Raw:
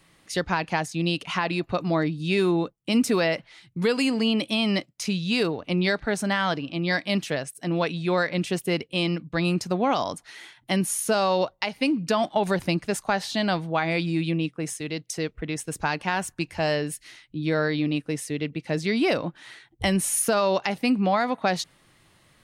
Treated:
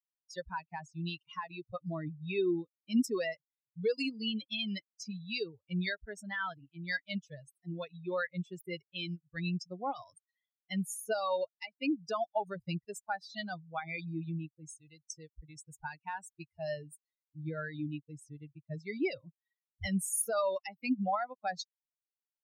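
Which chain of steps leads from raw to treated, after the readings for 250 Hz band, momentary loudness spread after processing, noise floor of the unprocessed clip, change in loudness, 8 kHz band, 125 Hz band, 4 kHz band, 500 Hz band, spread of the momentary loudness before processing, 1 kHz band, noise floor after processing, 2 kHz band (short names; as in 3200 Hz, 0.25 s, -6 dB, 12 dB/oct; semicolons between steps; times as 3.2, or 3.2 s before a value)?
-12.0 dB, 15 LU, -61 dBFS, -11.5 dB, -10.5 dB, -12.0 dB, -12.5 dB, -11.5 dB, 8 LU, -11.5 dB, under -85 dBFS, -12.0 dB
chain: per-bin expansion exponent 3; gain -4 dB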